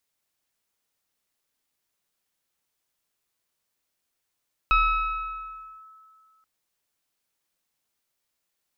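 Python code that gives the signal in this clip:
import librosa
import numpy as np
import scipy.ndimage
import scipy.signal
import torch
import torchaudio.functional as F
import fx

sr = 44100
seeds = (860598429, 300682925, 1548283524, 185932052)

y = fx.fm2(sr, length_s=1.73, level_db=-15.0, carrier_hz=1300.0, ratio=0.97, index=0.96, index_s=1.14, decay_s=2.22, shape='linear')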